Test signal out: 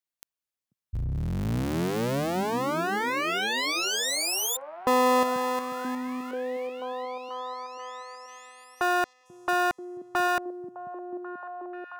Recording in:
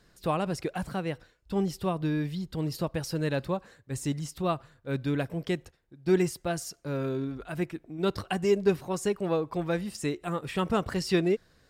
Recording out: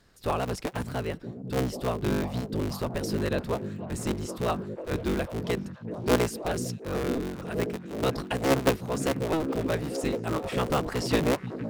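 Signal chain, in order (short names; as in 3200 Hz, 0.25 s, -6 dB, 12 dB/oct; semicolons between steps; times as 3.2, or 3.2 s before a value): cycle switcher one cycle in 3, inverted; delay with a stepping band-pass 0.487 s, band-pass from 160 Hz, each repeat 0.7 oct, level -1.5 dB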